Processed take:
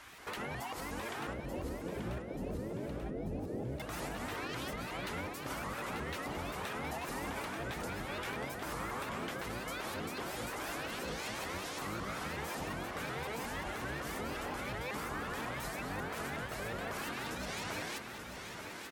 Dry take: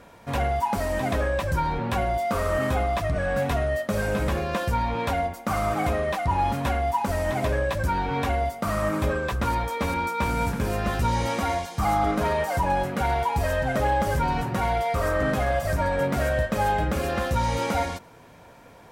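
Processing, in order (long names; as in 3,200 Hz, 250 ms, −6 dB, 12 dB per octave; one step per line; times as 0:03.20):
high-pass filter 83 Hz 12 dB per octave
gate on every frequency bin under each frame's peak −10 dB weak
0:01.33–0:03.80: Butterworth low-pass 610 Hz 48 dB per octave
downward compressor 4 to 1, threshold −42 dBFS, peak gain reduction 14 dB
brickwall limiter −36 dBFS, peak gain reduction 8 dB
repeating echo 887 ms, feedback 59%, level −7.5 dB
convolution reverb RT60 0.30 s, pre-delay 191 ms, DRR 16.5 dB
pitch modulation by a square or saw wave saw up 5.5 Hz, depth 250 cents
level +4.5 dB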